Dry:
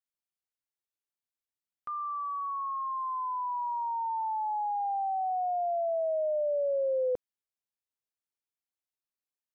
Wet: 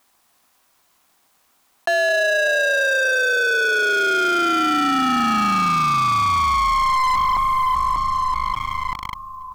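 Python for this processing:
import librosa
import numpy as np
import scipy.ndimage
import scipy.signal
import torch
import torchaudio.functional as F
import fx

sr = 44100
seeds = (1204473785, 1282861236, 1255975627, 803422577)

p1 = x + 10.0 ** (-9.5 / 20.0) * np.pad(x, (int(214 * sr / 1000.0), 0))[:len(x)]
p2 = fx.rider(p1, sr, range_db=10, speed_s=0.5)
p3 = p2 + fx.echo_wet_bandpass(p2, sr, ms=592, feedback_pct=34, hz=560.0, wet_db=-10.5, dry=0)
p4 = p3 * np.sin(2.0 * np.pi * 520.0 * np.arange(len(p3)) / sr)
p5 = fx.graphic_eq(p4, sr, hz=(125, 250, 500, 1000), db=(-3, 5, -5, 6))
p6 = fx.leveller(p5, sr, passes=5)
p7 = fx.peak_eq(p6, sr, hz=770.0, db=7.5, octaves=1.1)
p8 = fx.notch(p7, sr, hz=880.0, q=12.0)
y = fx.env_flatten(p8, sr, amount_pct=70)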